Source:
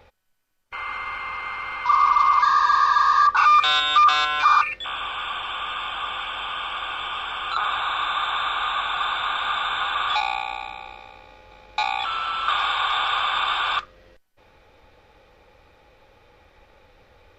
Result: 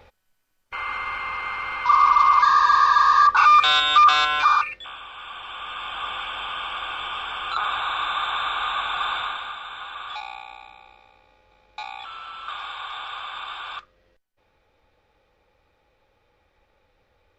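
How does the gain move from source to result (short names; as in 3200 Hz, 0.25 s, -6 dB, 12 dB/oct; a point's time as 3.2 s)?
4.35 s +1.5 dB
5.06 s -10.5 dB
6.06 s -1 dB
9.18 s -1 dB
9.58 s -11 dB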